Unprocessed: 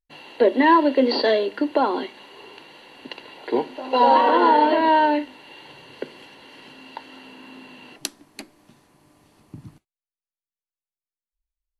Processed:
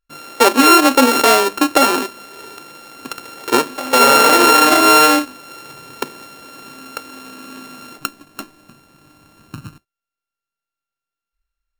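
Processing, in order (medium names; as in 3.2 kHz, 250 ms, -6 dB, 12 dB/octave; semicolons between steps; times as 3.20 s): sorted samples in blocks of 32 samples; loudness maximiser +8.5 dB; trim -1 dB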